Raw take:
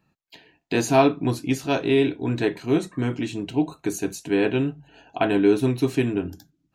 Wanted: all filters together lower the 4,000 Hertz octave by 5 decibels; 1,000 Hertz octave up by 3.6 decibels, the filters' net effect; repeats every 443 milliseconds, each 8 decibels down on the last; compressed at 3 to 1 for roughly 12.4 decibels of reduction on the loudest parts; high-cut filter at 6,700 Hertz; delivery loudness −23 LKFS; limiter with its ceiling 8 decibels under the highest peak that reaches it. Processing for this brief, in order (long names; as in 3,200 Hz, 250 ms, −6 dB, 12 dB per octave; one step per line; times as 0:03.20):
low-pass filter 6,700 Hz
parametric band 1,000 Hz +5.5 dB
parametric band 4,000 Hz −6.5 dB
downward compressor 3 to 1, threshold −27 dBFS
brickwall limiter −22 dBFS
repeating echo 443 ms, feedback 40%, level −8 dB
level +9 dB